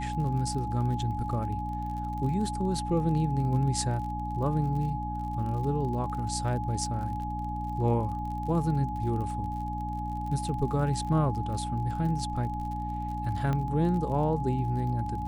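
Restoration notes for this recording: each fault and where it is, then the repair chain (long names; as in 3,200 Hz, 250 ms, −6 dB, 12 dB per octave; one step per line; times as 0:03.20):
surface crackle 40 per second −37 dBFS
mains hum 60 Hz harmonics 5 −35 dBFS
whistle 840 Hz −34 dBFS
0:13.53: click −19 dBFS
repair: click removal
hum removal 60 Hz, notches 5
notch filter 840 Hz, Q 30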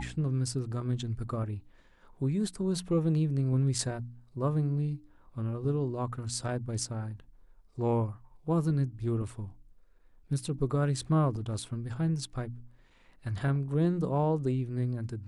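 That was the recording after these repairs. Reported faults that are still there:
none of them is left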